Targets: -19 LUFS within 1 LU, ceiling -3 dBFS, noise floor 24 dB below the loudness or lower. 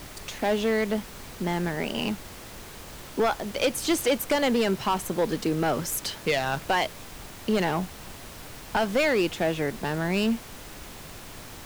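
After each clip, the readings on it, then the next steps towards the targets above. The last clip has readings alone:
clipped 1.3%; flat tops at -17.5 dBFS; noise floor -43 dBFS; noise floor target -51 dBFS; loudness -27.0 LUFS; peak -17.5 dBFS; loudness target -19.0 LUFS
-> clip repair -17.5 dBFS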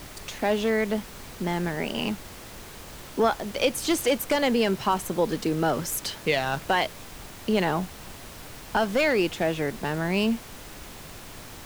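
clipped 0.0%; noise floor -43 dBFS; noise floor target -50 dBFS
-> noise print and reduce 7 dB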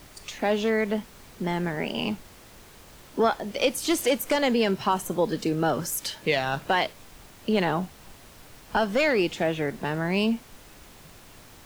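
noise floor -50 dBFS; loudness -26.0 LUFS; peak -9.0 dBFS; loudness target -19.0 LUFS
-> gain +7 dB; limiter -3 dBFS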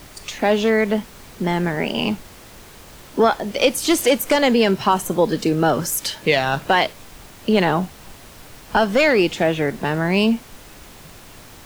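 loudness -19.0 LUFS; peak -3.0 dBFS; noise floor -43 dBFS

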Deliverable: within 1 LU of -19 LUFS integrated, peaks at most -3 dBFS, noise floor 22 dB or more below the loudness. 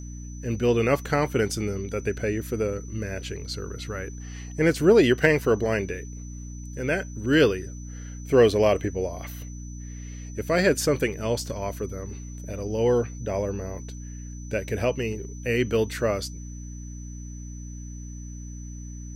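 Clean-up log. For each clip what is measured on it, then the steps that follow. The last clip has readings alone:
hum 60 Hz; harmonics up to 300 Hz; hum level -35 dBFS; steady tone 6000 Hz; tone level -47 dBFS; loudness -25.0 LUFS; peak -5.5 dBFS; loudness target -19.0 LUFS
-> de-hum 60 Hz, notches 5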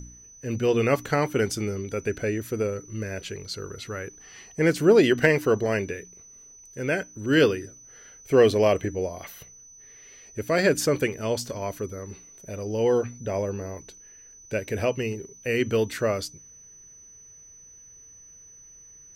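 hum none; steady tone 6000 Hz; tone level -47 dBFS
-> notch 6000 Hz, Q 30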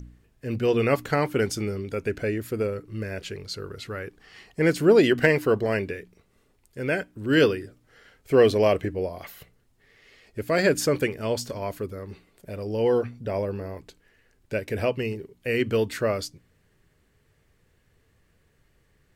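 steady tone none; loudness -25.0 LUFS; peak -5.5 dBFS; loudness target -19.0 LUFS
-> gain +6 dB; limiter -3 dBFS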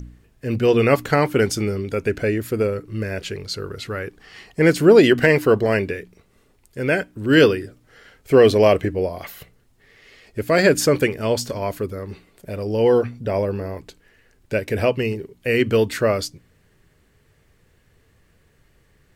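loudness -19.5 LUFS; peak -3.0 dBFS; noise floor -59 dBFS

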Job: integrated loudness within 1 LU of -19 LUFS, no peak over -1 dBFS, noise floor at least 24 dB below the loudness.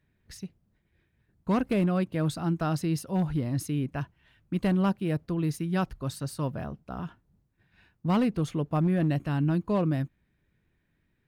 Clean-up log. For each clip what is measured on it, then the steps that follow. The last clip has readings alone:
clipped 0.9%; flat tops at -19.5 dBFS; loudness -29.0 LUFS; peak -19.5 dBFS; loudness target -19.0 LUFS
-> clip repair -19.5 dBFS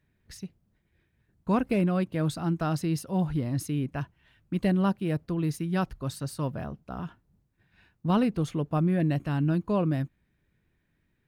clipped 0.0%; loudness -28.5 LUFS; peak -15.0 dBFS; loudness target -19.0 LUFS
-> gain +9.5 dB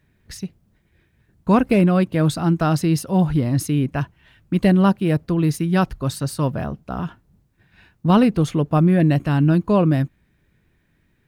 loudness -19.0 LUFS; peak -5.5 dBFS; noise floor -64 dBFS

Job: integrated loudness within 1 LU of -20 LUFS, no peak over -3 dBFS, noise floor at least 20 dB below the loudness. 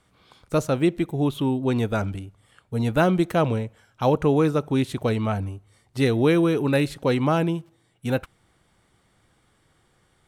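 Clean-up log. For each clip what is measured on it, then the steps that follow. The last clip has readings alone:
loudness -23.5 LUFS; peak -8.0 dBFS; loudness target -20.0 LUFS
-> gain +3.5 dB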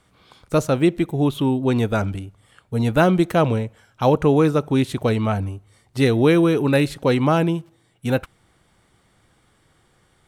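loudness -20.0 LUFS; peak -4.5 dBFS; noise floor -61 dBFS

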